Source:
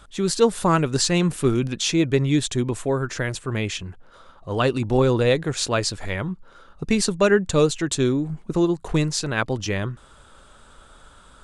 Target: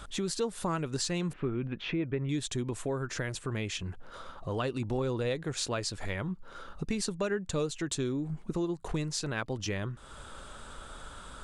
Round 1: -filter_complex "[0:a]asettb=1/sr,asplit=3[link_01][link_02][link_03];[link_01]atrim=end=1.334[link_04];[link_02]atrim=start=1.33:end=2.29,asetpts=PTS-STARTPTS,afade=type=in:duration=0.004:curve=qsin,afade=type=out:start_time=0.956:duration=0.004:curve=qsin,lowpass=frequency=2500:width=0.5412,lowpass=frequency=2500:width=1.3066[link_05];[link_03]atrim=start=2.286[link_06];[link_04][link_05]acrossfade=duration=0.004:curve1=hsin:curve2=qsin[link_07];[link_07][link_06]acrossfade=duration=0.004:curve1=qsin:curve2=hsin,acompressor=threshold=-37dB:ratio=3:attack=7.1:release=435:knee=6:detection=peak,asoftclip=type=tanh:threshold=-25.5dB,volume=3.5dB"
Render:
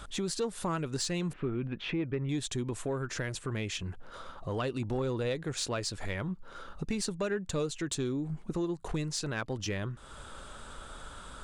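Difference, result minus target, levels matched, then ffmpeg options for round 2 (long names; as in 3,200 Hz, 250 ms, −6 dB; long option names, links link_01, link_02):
soft clipping: distortion +15 dB
-filter_complex "[0:a]asettb=1/sr,asplit=3[link_01][link_02][link_03];[link_01]atrim=end=1.334[link_04];[link_02]atrim=start=1.33:end=2.29,asetpts=PTS-STARTPTS,afade=type=in:duration=0.004:curve=qsin,afade=type=out:start_time=0.956:duration=0.004:curve=qsin,lowpass=frequency=2500:width=0.5412,lowpass=frequency=2500:width=1.3066[link_05];[link_03]atrim=start=2.286[link_06];[link_04][link_05]acrossfade=duration=0.004:curve1=hsin:curve2=qsin[link_07];[link_07][link_06]acrossfade=duration=0.004:curve1=qsin:curve2=hsin,acompressor=threshold=-37dB:ratio=3:attack=7.1:release=435:knee=6:detection=peak,asoftclip=type=tanh:threshold=-17dB,volume=3.5dB"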